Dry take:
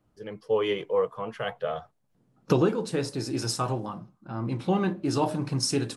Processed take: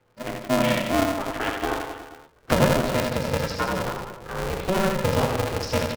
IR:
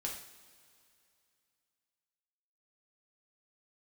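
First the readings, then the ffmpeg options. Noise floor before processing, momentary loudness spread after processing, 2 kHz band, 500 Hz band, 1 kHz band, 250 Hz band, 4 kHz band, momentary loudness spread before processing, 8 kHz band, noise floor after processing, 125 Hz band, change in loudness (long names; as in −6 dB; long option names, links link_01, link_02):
−70 dBFS, 13 LU, +11.0 dB, +3.0 dB, +6.5 dB, +2.5 dB, +4.0 dB, 13 LU, +1.0 dB, −58 dBFS, +3.0 dB, +3.5 dB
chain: -filter_complex "[0:a]asplit=2[link_01][link_02];[link_02]acompressor=threshold=-38dB:ratio=6,volume=2dB[link_03];[link_01][link_03]amix=inputs=2:normalize=0,highpass=frequency=210:width=0.5412,highpass=frequency=210:width=1.3066,equalizer=frequency=320:width_type=q:width=4:gain=4,equalizer=frequency=890:width_type=q:width=4:gain=-7,equalizer=frequency=1400:width_type=q:width=4:gain=5,equalizer=frequency=2200:width_type=q:width=4:gain=5,lowpass=frequency=4100:width=0.5412,lowpass=frequency=4100:width=1.3066,aecho=1:1:80|168|264.8|371.3|488.4:0.631|0.398|0.251|0.158|0.1,aeval=exprs='val(0)*sgn(sin(2*PI*190*n/s))':channel_layout=same"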